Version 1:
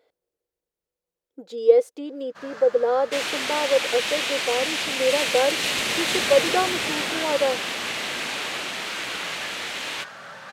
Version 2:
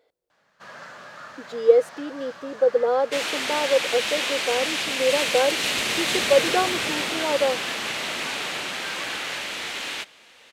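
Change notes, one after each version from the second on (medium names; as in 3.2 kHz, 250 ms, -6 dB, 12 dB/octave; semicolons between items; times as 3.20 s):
first sound: entry -1.75 s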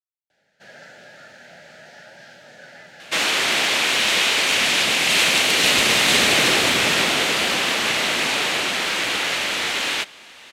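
speech: muted; first sound: add Butterworth band-stop 1.1 kHz, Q 1.7; second sound +8.0 dB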